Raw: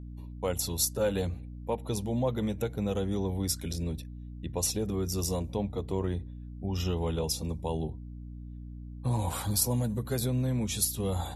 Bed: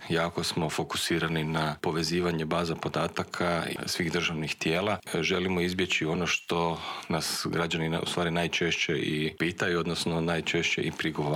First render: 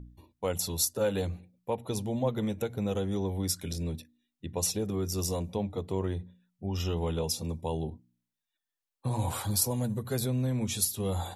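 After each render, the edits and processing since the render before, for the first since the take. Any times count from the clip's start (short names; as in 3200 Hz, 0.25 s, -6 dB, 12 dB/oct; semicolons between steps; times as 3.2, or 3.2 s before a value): de-hum 60 Hz, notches 5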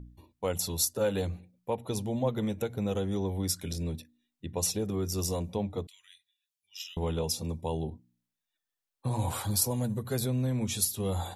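5.87–6.97 inverse Chebyshev high-pass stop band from 730 Hz, stop band 60 dB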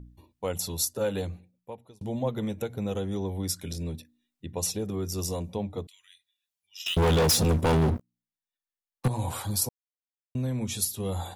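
1.17–2.01 fade out; 6.86–9.08 sample leveller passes 5; 9.69–10.35 mute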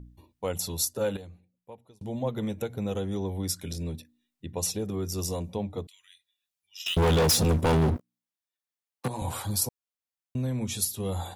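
1.17–2.45 fade in linear, from -13.5 dB; 7.96–9.22 Bessel high-pass 220 Hz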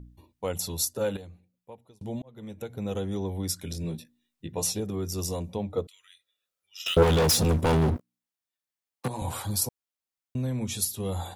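2.22–2.96 fade in; 3.82–4.8 doubler 18 ms -4 dB; 5.71–7.02 small resonant body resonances 510/1300 Hz, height 10 dB -> 15 dB, ringing for 20 ms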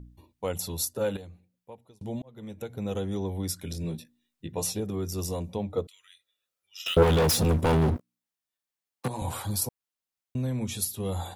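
dynamic EQ 6200 Hz, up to -4 dB, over -41 dBFS, Q 0.89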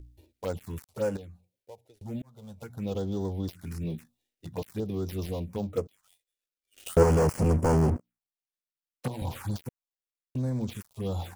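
switching dead time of 0.12 ms; envelope phaser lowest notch 150 Hz, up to 3700 Hz, full sweep at -25 dBFS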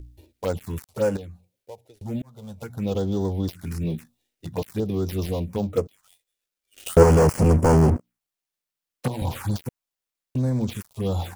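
gain +6.5 dB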